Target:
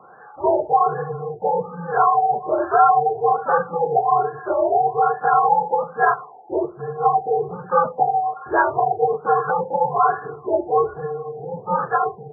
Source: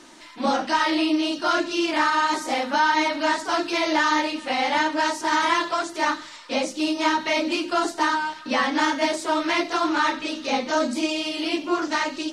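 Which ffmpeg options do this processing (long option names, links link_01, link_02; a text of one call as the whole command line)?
ffmpeg -i in.wav -af "highpass=frequency=540:width_type=q:width=0.5412,highpass=frequency=540:width_type=q:width=1.307,lowpass=frequency=3100:width_type=q:width=0.5176,lowpass=frequency=3100:width_type=q:width=0.7071,lowpass=frequency=3100:width_type=q:width=1.932,afreqshift=-170,afftfilt=real='re*lt(b*sr/1024,900*pow(1800/900,0.5+0.5*sin(2*PI*1.2*pts/sr)))':imag='im*lt(b*sr/1024,900*pow(1800/900,0.5+0.5*sin(2*PI*1.2*pts/sr)))':win_size=1024:overlap=0.75,volume=7dB" out.wav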